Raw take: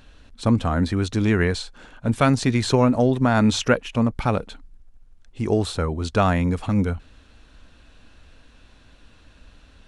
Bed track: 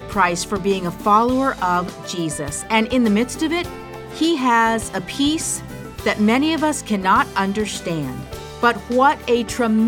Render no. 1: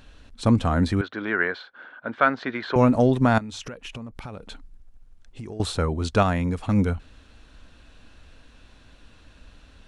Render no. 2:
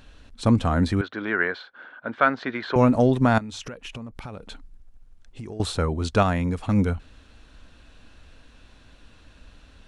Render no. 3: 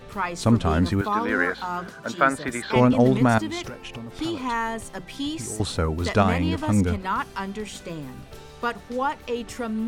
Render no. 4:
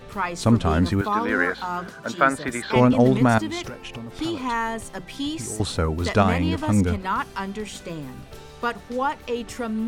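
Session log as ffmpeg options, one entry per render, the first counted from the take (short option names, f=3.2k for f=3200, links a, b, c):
-filter_complex "[0:a]asettb=1/sr,asplit=3[a][b][c];[a]atrim=end=1.014[d];[b]atrim=start=1.01:end=2.76,asetpts=PTS-STARTPTS,afade=t=in:d=0.004:c=qsin,afade=t=out:st=1.746:d=0.004:c=qsin,highpass=440,equalizer=f=450:t=q:w=4:g=-3,equalizer=f=840:t=q:w=4:g=-3,equalizer=f=1.5k:t=q:w=4:g=8,equalizer=f=2.6k:t=q:w=4:g=-8,lowpass=f=3.1k:w=0.5412,lowpass=f=3.1k:w=1.3066[e];[c]atrim=start=2.756[f];[d][e]acrossfade=d=0.004:c1=hsin:c2=qsin[g];[g][f]acrossfade=d=0.004:c1=qsin:c2=hsin,asettb=1/sr,asplit=3[h][i][j];[h]atrim=end=3.384[k];[i]atrim=start=3.38:end=5.6,asetpts=PTS-STARTPTS,afade=t=in:d=0.004:c=qsin,afade=t=out:st=2.216:d=0.004:c=qsin,acompressor=threshold=-32dB:ratio=16:attack=3.2:release=140:knee=1:detection=peak[l];[j]atrim=start=5.596[m];[k][l]acrossfade=d=0.004:c1=hsin:c2=qsin[n];[n][m]acrossfade=d=0.004:c1=qsin:c2=hsin,asplit=3[o][p][q];[o]atrim=end=6.232[r];[p]atrim=start=6.228:end=6.692,asetpts=PTS-STARTPTS,volume=-3.5dB[s];[q]atrim=start=6.688[t];[r][s]acrossfade=d=0.004:c1=hsin:c2=hsin[u];[u][t]acrossfade=d=0.004:c1=hsin:c2=hsin"
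-af anull
-filter_complex "[1:a]volume=-11dB[a];[0:a][a]amix=inputs=2:normalize=0"
-af "volume=1dB"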